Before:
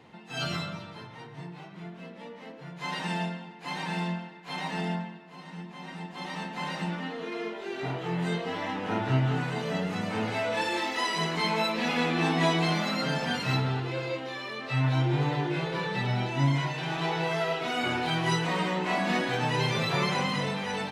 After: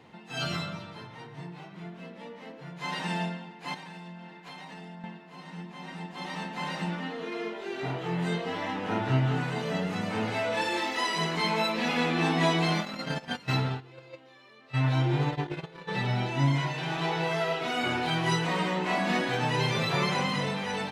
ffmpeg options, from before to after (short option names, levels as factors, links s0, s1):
-filter_complex "[0:a]asettb=1/sr,asplit=3[s0][s1][s2];[s0]atrim=end=3.744[s3];[s1]atrim=start=3.74:end=5.04,asetpts=PTS-STARTPTS,afade=t=in:d=0.004:c=qsin,afade=t=out:st=1.296:d=0.004:c=qsin,acompressor=threshold=0.01:ratio=12:attack=3.2:release=140:knee=1:detection=peak[s4];[s2]atrim=start=5.036[s5];[s3][s4]acrossfade=d=0.004:c1=hsin:c2=qsin[s6];[s6][s5]acrossfade=d=0.004:c1=qsin:c2=hsin,asplit=3[s7][s8][s9];[s7]afade=t=out:st=12.8:d=0.02[s10];[s8]agate=range=0.126:threshold=0.0355:ratio=16:release=100:detection=peak,afade=t=in:st=12.8:d=0.02,afade=t=out:st=15.87:d=0.02[s11];[s9]afade=t=in:st=15.87:d=0.02[s12];[s10][s11][s12]amix=inputs=3:normalize=0"